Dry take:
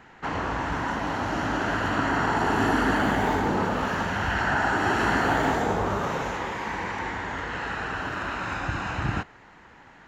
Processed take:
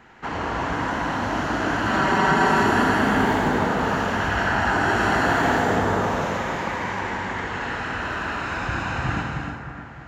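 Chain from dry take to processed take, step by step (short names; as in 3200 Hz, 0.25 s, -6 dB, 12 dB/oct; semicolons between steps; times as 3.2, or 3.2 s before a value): 1.87–2.63 comb 5.2 ms, depth 95%; split-band echo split 2200 Hz, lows 0.309 s, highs 81 ms, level -8 dB; non-linear reverb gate 0.37 s flat, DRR 1 dB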